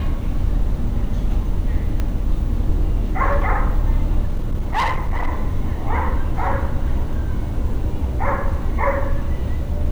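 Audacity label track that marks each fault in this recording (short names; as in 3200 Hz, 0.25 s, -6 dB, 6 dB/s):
2.000000	2.000000	pop -11 dBFS
4.250000	5.280000	clipped -15.5 dBFS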